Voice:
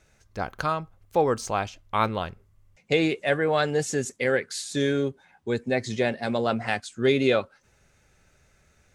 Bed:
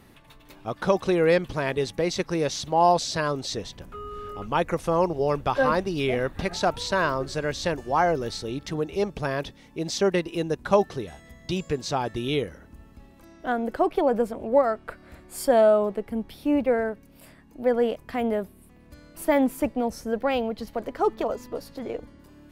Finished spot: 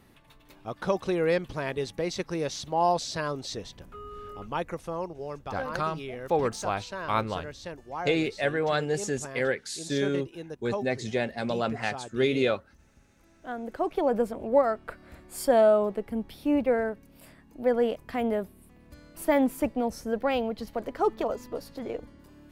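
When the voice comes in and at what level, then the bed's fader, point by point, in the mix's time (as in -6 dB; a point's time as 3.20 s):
5.15 s, -3.5 dB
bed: 4.36 s -5 dB
5.18 s -13 dB
13.25 s -13 dB
14.16 s -2 dB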